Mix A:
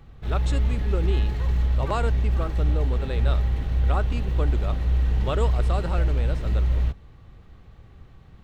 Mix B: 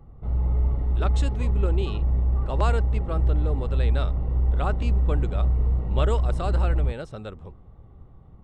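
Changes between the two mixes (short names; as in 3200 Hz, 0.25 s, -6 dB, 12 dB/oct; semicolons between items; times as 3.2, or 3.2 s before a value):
speech: entry +0.70 s; background: add polynomial smoothing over 65 samples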